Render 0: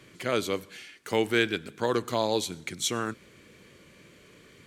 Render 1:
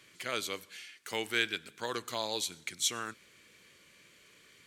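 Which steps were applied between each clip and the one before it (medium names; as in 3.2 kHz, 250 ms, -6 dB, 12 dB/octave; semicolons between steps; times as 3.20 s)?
tilt shelf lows -7 dB; trim -7.5 dB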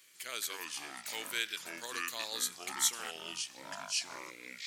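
ever faster or slower copies 155 ms, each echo -5 st, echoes 3; RIAA curve recording; trim -8.5 dB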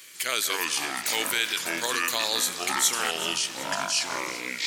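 in parallel at +2 dB: compressor with a negative ratio -41 dBFS, ratio -1; on the sum: echo whose repeats swap between lows and highs 190 ms, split 1.6 kHz, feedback 77%, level -13 dB; trim +6 dB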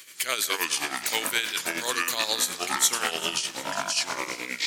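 tremolo 9.5 Hz, depth 64%; trim +2.5 dB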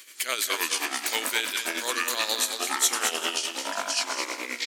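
brick-wall FIR high-pass 210 Hz; delay 215 ms -7 dB; trim -1 dB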